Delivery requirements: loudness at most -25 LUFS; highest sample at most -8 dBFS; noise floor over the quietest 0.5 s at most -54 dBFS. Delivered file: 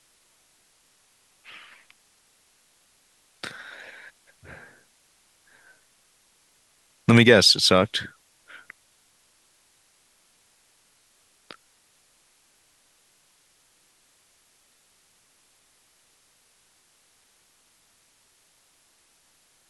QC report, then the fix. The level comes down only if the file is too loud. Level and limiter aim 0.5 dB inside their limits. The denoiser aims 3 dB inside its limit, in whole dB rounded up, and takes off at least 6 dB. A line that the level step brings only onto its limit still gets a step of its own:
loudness -18.5 LUFS: fail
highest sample -2.5 dBFS: fail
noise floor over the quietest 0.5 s -63 dBFS: pass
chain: trim -7 dB

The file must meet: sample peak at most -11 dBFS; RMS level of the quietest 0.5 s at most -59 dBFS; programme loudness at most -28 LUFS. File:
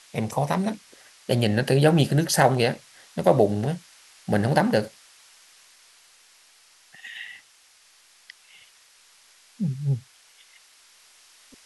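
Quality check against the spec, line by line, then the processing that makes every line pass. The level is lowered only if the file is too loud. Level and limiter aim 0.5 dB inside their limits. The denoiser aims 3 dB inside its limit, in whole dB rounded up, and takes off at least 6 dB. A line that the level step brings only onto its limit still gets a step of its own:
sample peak -4.5 dBFS: fail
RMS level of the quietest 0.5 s -57 dBFS: fail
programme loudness -23.0 LUFS: fail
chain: trim -5.5 dB; peak limiter -11.5 dBFS

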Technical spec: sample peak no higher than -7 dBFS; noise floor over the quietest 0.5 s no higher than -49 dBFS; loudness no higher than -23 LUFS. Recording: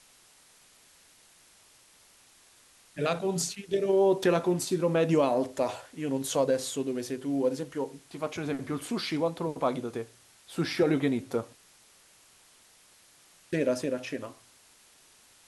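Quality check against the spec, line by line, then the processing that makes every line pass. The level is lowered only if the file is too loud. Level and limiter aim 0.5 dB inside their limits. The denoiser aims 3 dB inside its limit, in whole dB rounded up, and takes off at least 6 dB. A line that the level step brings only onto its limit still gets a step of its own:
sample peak -13.0 dBFS: pass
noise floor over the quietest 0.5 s -59 dBFS: pass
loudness -29.5 LUFS: pass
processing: none needed

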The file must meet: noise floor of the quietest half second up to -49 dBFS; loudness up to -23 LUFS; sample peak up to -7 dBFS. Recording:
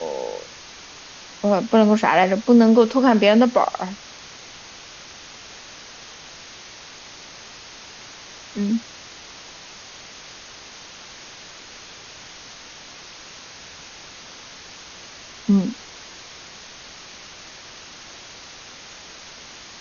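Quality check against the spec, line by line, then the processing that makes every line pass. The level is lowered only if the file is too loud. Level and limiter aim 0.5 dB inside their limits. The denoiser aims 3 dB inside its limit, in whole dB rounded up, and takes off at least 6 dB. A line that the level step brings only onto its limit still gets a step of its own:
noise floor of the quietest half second -41 dBFS: fail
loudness -18.0 LUFS: fail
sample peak -3.0 dBFS: fail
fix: noise reduction 6 dB, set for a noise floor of -41 dBFS; trim -5.5 dB

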